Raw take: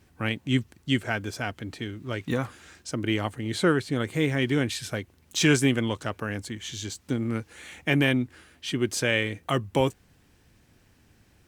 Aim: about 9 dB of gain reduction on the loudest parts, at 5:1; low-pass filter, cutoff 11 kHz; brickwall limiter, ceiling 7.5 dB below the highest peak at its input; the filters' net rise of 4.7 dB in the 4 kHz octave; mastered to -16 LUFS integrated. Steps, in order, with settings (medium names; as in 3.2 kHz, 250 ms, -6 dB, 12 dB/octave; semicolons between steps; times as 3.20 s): low-pass 11 kHz; peaking EQ 4 kHz +6.5 dB; compression 5:1, threshold -26 dBFS; trim +17.5 dB; peak limiter -2.5 dBFS